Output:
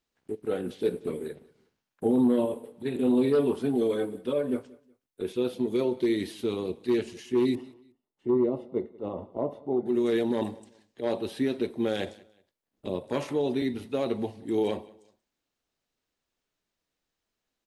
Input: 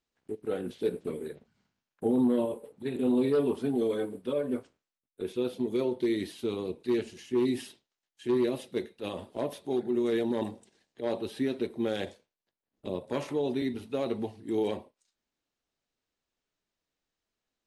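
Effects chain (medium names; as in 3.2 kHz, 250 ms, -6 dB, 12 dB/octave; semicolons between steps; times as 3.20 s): 7.55–9.86 s: Savitzky-Golay filter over 65 samples; feedback delay 184 ms, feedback 31%, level -23 dB; trim +2.5 dB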